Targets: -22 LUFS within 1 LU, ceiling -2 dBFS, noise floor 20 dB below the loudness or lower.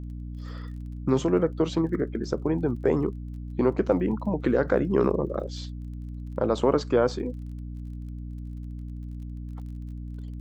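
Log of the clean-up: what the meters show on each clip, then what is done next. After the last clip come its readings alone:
ticks 29/s; hum 60 Hz; harmonics up to 300 Hz; hum level -33 dBFS; loudness -26.0 LUFS; peak -8.5 dBFS; loudness target -22.0 LUFS
-> de-click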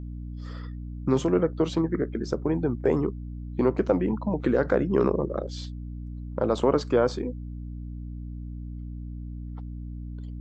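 ticks 0/s; hum 60 Hz; harmonics up to 300 Hz; hum level -33 dBFS
-> notches 60/120/180/240/300 Hz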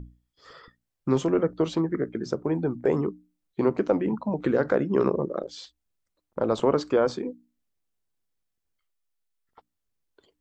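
hum none; loudness -26.0 LUFS; peak -9.0 dBFS; loudness target -22.0 LUFS
-> gain +4 dB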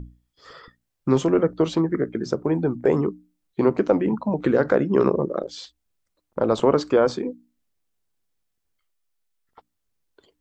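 loudness -22.0 LUFS; peak -5.0 dBFS; noise floor -77 dBFS

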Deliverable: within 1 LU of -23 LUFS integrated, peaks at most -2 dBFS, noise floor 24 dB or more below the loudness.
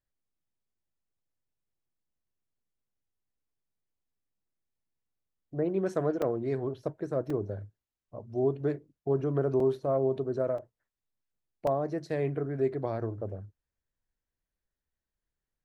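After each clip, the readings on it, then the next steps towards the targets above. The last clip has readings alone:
dropouts 5; longest dropout 3.1 ms; loudness -31.5 LUFS; peak -16.0 dBFS; loudness target -23.0 LUFS
-> interpolate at 6.22/7.3/9.6/10.58/11.67, 3.1 ms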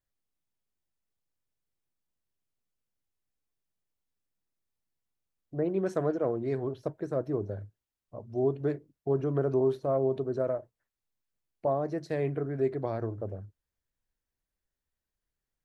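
dropouts 0; loudness -31.5 LUFS; peak -16.0 dBFS; loudness target -23.0 LUFS
-> gain +8.5 dB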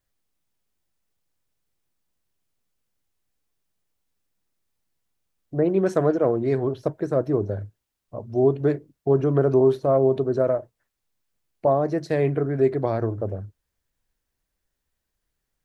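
loudness -23.0 LUFS; peak -7.5 dBFS; noise floor -81 dBFS

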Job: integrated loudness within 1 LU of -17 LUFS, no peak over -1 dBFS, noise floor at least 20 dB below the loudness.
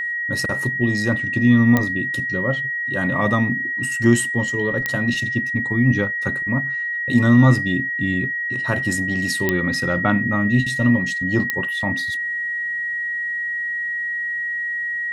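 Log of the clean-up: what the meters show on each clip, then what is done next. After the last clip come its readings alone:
clicks 4; steady tone 1900 Hz; tone level -22 dBFS; loudness -20.0 LUFS; peak -3.0 dBFS; loudness target -17.0 LUFS
-> de-click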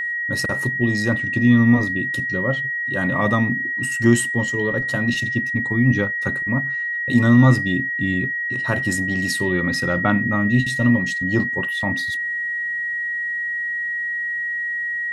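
clicks 0; steady tone 1900 Hz; tone level -22 dBFS
-> notch 1900 Hz, Q 30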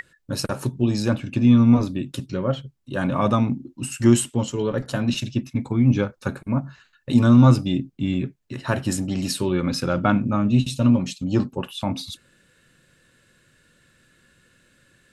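steady tone none; loudness -22.0 LUFS; peak -3.5 dBFS; loudness target -17.0 LUFS
-> gain +5 dB; limiter -1 dBFS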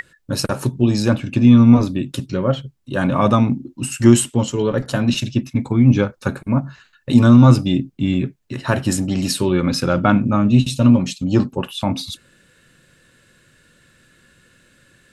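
loudness -17.0 LUFS; peak -1.0 dBFS; noise floor -56 dBFS

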